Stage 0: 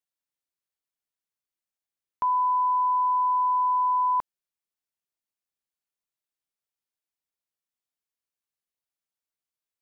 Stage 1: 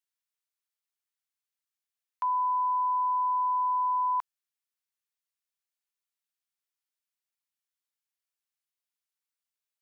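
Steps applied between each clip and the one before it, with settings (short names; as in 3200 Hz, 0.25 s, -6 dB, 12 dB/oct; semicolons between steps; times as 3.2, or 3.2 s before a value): HPF 1100 Hz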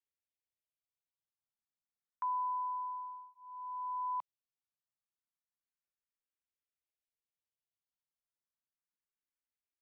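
tone controls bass +10 dB, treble -13 dB; endless phaser +0.3 Hz; gain -5.5 dB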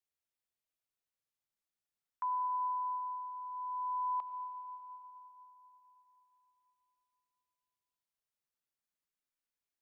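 reverb RT60 3.8 s, pre-delay 50 ms, DRR 7 dB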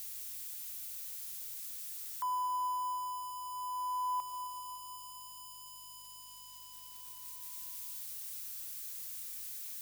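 switching spikes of -37 dBFS; hum 50 Hz, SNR 32 dB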